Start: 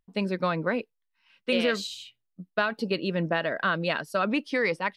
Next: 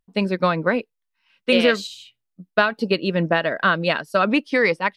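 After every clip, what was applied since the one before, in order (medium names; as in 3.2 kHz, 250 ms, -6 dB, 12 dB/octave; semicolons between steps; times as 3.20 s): upward expansion 1.5:1, over -39 dBFS; trim +9 dB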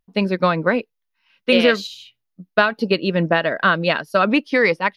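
peaking EQ 8 kHz -14 dB 0.23 oct; trim +2 dB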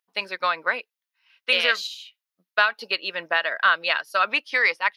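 high-pass 1.1 kHz 12 dB/octave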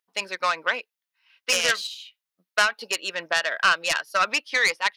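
self-modulated delay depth 0.12 ms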